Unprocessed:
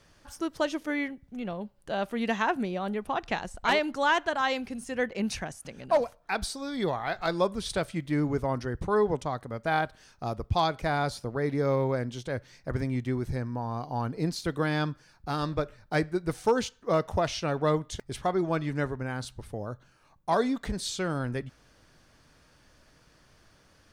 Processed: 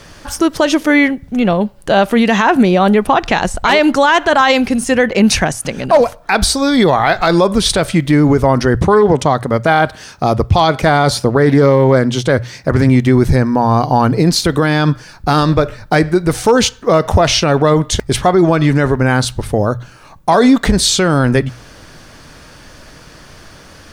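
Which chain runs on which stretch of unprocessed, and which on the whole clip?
0:08.75–0:12.89: high-pass filter 59 Hz + highs frequency-modulated by the lows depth 0.21 ms
whole clip: mains-hum notches 60/120 Hz; boost into a limiter +23 dB; level −1 dB

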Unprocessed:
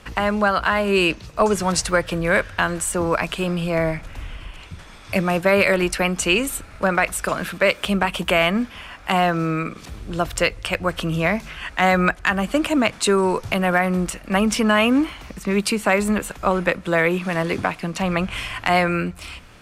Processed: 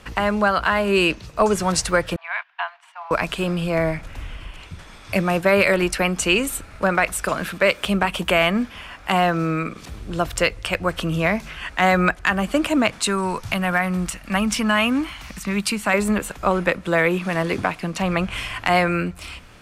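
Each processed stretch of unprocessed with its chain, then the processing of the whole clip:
0:02.16–0:03.11: noise gate −25 dBFS, range −12 dB + Chebyshev high-pass with heavy ripple 680 Hz, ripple 6 dB + high-frequency loss of the air 310 metres
0:13.02–0:15.94: parametric band 430 Hz −9 dB 1.1 octaves + one half of a high-frequency compander encoder only
whole clip: no processing

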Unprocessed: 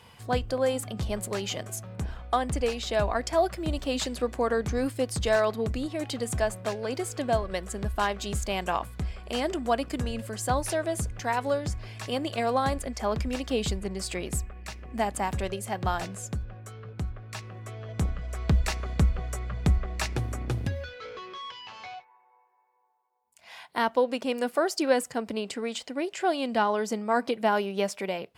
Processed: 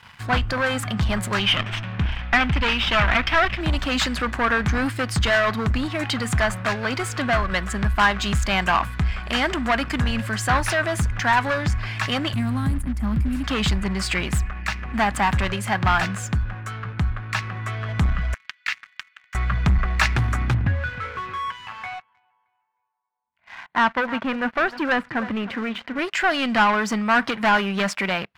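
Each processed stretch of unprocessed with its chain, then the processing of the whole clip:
0:01.39–0:03.61: lower of the sound and its delayed copy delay 0.36 ms + low-pass with resonance 3,400 Hz, resonance Q 2
0:12.33–0:13.44: drawn EQ curve 290 Hz 0 dB, 440 Hz −22 dB, 6,000 Hz −20 dB, 9,700 Hz −1 dB + multiband upward and downward compressor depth 70%
0:18.34–0:19.35: four-pole ladder high-pass 1,600 Hz, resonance 30% + high-frequency loss of the air 75 metres + highs frequency-modulated by the lows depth 0.29 ms
0:20.54–0:25.99: high-frequency loss of the air 460 metres + repeating echo 311 ms, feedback 34%, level −18 dB
whole clip: leveller curve on the samples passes 3; drawn EQ curve 200 Hz 0 dB, 470 Hz −11 dB, 990 Hz +3 dB, 1,600 Hz +8 dB, 9,600 Hz −9 dB

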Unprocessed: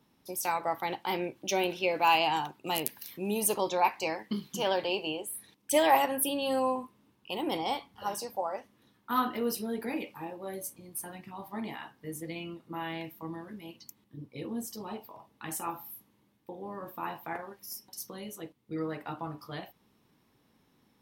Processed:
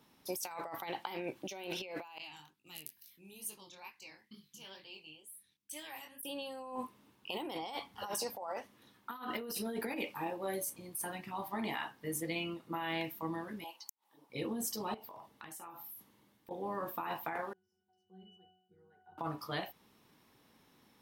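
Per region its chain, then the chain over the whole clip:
0:02.18–0:06.23: guitar amp tone stack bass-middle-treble 6-0-2 + chorus effect 2.2 Hz, delay 19.5 ms, depth 7.1 ms
0:13.64–0:14.30: high-pass with resonance 850 Hz, resonance Q 4.8 + parametric band 1,600 Hz −7 dB 2.9 octaves + gate with flip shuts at −34 dBFS, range −37 dB
0:14.94–0:16.51: downward compressor 10 to 1, threshold −49 dBFS + notch filter 2,500 Hz, Q 24
0:17.53–0:19.18: low-pass filter 9,500 Hz + resonances in every octave F#, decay 0.69 s + level that may fall only so fast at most 71 dB per second
whole clip: low-shelf EQ 390 Hz −6.5 dB; compressor whose output falls as the input rises −40 dBFS, ratio −1

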